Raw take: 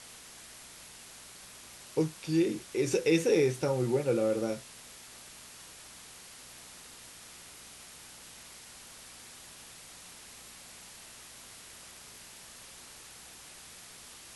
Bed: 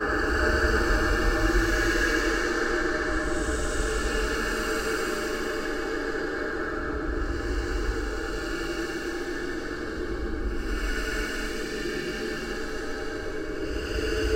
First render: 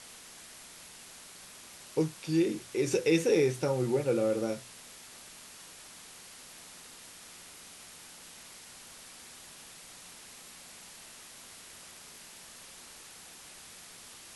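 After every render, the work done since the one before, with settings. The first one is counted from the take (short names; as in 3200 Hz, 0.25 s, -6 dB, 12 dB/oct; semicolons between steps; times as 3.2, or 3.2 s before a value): de-hum 60 Hz, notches 2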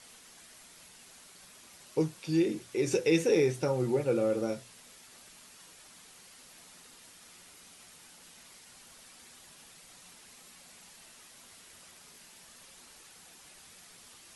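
denoiser 6 dB, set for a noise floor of -51 dBFS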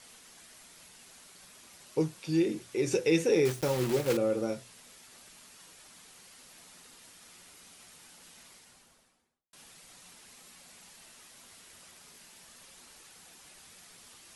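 3.45–4.18 block floating point 3-bit; 8.4–9.53 studio fade out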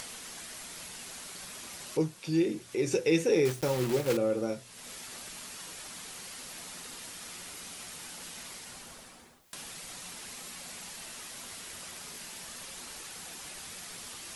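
upward compressor, threshold -33 dBFS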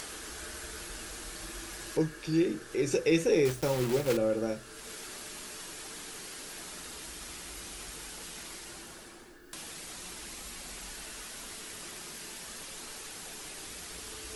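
add bed -23.5 dB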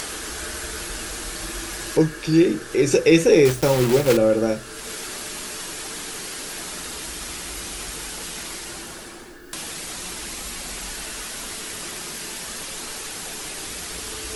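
gain +11 dB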